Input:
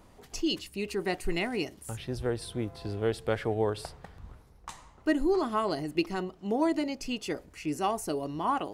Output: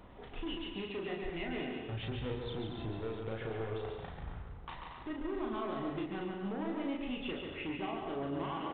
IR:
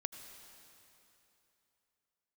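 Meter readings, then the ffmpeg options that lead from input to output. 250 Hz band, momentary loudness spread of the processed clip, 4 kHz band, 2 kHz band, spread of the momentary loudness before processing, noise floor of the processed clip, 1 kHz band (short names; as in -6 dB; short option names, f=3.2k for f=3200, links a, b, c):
-7.0 dB, 8 LU, -7.0 dB, -6.5 dB, 12 LU, -49 dBFS, -9.0 dB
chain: -filter_complex "[0:a]acompressor=threshold=-37dB:ratio=6,asoftclip=type=hard:threshold=-38.5dB,aecho=1:1:140|231|290.2|328.6|353.6:0.631|0.398|0.251|0.158|0.1,asplit=2[a][b];[1:a]atrim=start_sample=2205,afade=t=out:st=0.16:d=0.01,atrim=end_sample=7497,adelay=36[c];[b][c]afir=irnorm=-1:irlink=0,volume=-1dB[d];[a][d]amix=inputs=2:normalize=0,volume=1dB" -ar 8000 -c:a adpcm_g726 -b:a 40k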